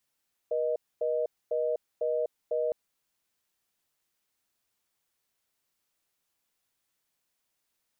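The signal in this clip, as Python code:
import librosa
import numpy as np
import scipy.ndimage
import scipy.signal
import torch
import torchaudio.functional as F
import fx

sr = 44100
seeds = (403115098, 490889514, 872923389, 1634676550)

y = fx.call_progress(sr, length_s=2.21, kind='reorder tone', level_db=-28.5)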